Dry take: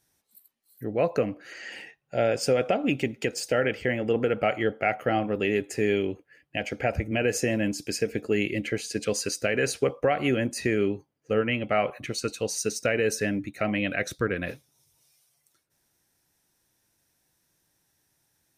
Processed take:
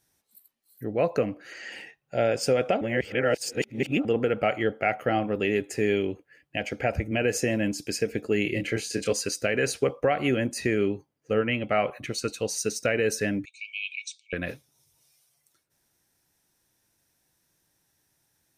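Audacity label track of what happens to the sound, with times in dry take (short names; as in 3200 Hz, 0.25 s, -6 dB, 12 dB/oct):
2.810000	4.050000	reverse
8.430000	9.130000	doubler 26 ms -4.5 dB
13.450000	14.330000	brick-wall FIR band-pass 2200–8900 Hz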